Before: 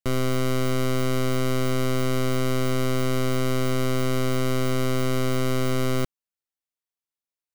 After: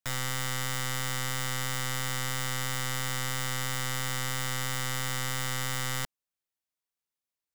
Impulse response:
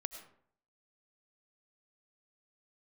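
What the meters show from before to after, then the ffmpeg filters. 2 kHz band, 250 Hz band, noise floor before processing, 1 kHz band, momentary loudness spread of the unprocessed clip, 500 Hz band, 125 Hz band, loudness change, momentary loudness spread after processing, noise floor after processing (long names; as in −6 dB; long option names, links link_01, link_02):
+0.5 dB, −17.0 dB, below −85 dBFS, −4.5 dB, 0 LU, −17.5 dB, −9.0 dB, −6.0 dB, 0 LU, below −85 dBFS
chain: -filter_complex "[0:a]acrossover=split=410|3000[link_01][link_02][link_03];[link_02]acompressor=threshold=-30dB:ratio=3[link_04];[link_01][link_04][link_03]amix=inputs=3:normalize=0,aeval=exprs='(mod(18.8*val(0)+1,2)-1)/18.8':channel_layout=same"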